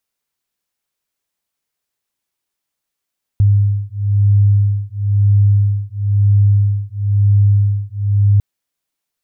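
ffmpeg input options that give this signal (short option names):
-f lavfi -i "aevalsrc='0.224*(sin(2*PI*101*t)+sin(2*PI*102*t))':d=5:s=44100"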